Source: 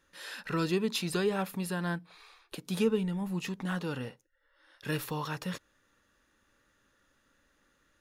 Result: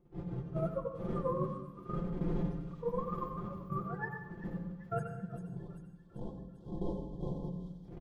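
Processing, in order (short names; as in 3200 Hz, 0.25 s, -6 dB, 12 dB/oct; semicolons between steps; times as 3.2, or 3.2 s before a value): spectrum mirrored in octaves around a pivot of 460 Hz; wind noise 240 Hz -32 dBFS; comb 5.8 ms, depth 74%; small resonant body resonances 410/3300 Hz, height 7 dB; reverse; compressor 8:1, threshold -38 dBFS, peak gain reduction 21 dB; reverse; spectral delete 5.03–7.57, 1100–3100 Hz; gate -39 dBFS, range -30 dB; thin delay 0.393 s, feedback 58%, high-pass 3200 Hz, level -6.5 dB; on a send at -7 dB: reverb RT60 0.90 s, pre-delay 83 ms; on the sum: harmonic-percussive split percussive -11 dB; warbling echo 0.384 s, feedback 33%, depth 129 cents, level -24 dB; gain +9 dB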